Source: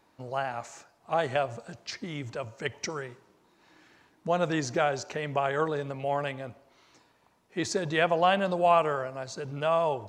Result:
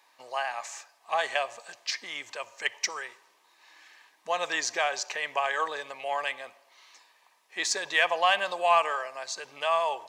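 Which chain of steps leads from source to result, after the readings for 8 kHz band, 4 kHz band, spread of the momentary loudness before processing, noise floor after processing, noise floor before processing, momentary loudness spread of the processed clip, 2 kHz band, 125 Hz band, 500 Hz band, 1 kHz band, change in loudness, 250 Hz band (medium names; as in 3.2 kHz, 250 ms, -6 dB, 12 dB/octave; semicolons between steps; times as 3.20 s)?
+7.0 dB, +6.5 dB, 15 LU, -65 dBFS, -66 dBFS, 15 LU, +5.0 dB, under -25 dB, -4.5 dB, +0.5 dB, +0.5 dB, -16.5 dB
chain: high-pass 1.1 kHz 12 dB/octave; in parallel at -9 dB: saturation -26 dBFS, distortion -12 dB; on the sum: Butterworth band-stop 1.4 kHz, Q 6.2; trim +4.5 dB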